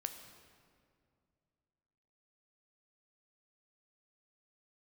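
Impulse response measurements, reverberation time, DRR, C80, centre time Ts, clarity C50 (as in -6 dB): 2.3 s, 6.5 dB, 9.0 dB, 28 ms, 8.0 dB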